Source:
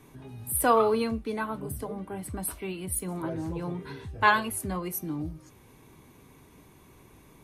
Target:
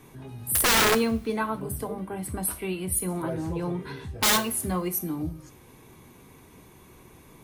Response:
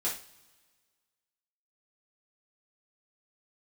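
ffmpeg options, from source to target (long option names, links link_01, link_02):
-filter_complex "[0:a]bandreject=frequency=50:width_type=h:width=6,bandreject=frequency=100:width_type=h:width=6,bandreject=frequency=150:width_type=h:width=6,bandreject=frequency=200:width_type=h:width=6,bandreject=frequency=250:width_type=h:width=6,aeval=exprs='(mod(8.91*val(0)+1,2)-1)/8.91':channel_layout=same,asplit=2[link_01][link_02];[1:a]atrim=start_sample=2205,highshelf=frequency=7200:gain=9[link_03];[link_02][link_03]afir=irnorm=-1:irlink=0,volume=-16dB[link_04];[link_01][link_04]amix=inputs=2:normalize=0,volume=2.5dB"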